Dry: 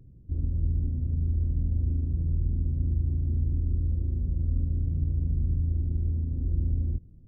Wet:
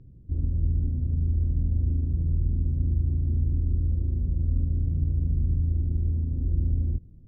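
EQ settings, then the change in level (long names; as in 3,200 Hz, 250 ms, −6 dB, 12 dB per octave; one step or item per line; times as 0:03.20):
high-frequency loss of the air 160 metres
+2.0 dB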